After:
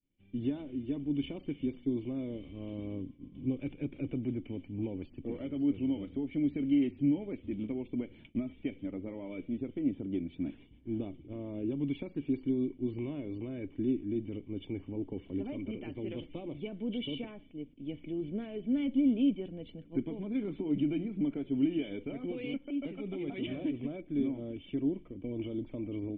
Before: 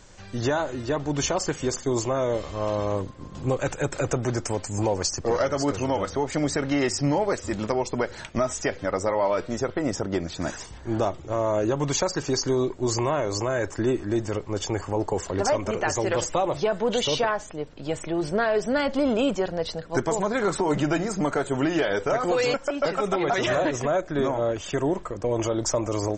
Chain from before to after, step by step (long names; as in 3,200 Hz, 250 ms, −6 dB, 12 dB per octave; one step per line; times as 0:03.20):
downward expander −36 dBFS
formant resonators in series i